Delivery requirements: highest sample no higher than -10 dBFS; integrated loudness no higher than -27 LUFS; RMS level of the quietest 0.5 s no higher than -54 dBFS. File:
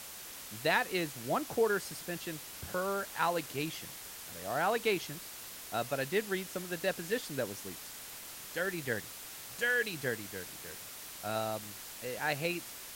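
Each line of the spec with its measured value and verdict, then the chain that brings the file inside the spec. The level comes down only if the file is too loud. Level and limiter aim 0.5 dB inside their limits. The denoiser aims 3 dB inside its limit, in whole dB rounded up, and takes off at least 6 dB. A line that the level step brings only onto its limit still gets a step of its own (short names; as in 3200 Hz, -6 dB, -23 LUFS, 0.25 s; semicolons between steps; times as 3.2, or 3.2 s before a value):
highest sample -15.0 dBFS: OK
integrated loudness -35.5 LUFS: OK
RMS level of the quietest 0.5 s -47 dBFS: fail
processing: denoiser 10 dB, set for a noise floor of -47 dBFS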